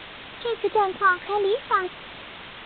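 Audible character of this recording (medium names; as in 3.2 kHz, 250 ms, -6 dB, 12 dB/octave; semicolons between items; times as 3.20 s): phasing stages 6, 1.6 Hz, lowest notch 650–2700 Hz; a quantiser's noise floor 6-bit, dither triangular; A-law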